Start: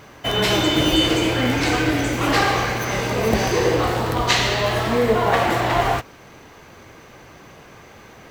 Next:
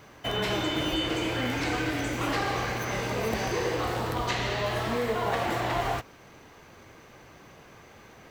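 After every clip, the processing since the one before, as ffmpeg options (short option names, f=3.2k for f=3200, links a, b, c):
-filter_complex "[0:a]acrossover=split=710|2800[a][b][c];[a]acompressor=threshold=-21dB:ratio=4[d];[b]acompressor=threshold=-23dB:ratio=4[e];[c]acompressor=threshold=-32dB:ratio=4[f];[d][e][f]amix=inputs=3:normalize=0,volume=-7dB"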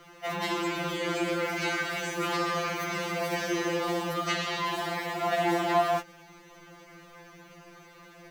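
-af "afftfilt=real='re*2.83*eq(mod(b,8),0)':imag='im*2.83*eq(mod(b,8),0)':win_size=2048:overlap=0.75,volume=2.5dB"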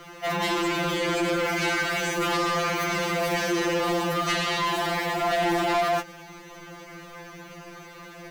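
-af "asoftclip=type=tanh:threshold=-28.5dB,volume=8dB"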